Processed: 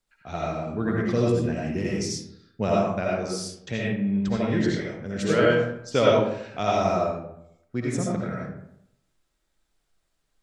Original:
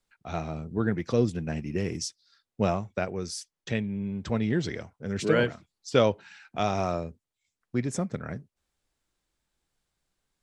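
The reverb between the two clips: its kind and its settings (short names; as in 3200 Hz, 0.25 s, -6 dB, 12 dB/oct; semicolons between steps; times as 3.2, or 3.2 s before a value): digital reverb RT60 0.76 s, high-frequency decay 0.55×, pre-delay 40 ms, DRR -4.5 dB; gain -1.5 dB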